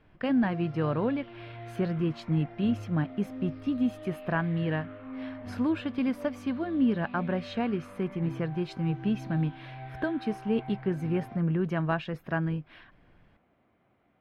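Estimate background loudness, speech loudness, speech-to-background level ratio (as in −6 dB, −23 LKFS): −43.5 LKFS, −30.5 LKFS, 13.0 dB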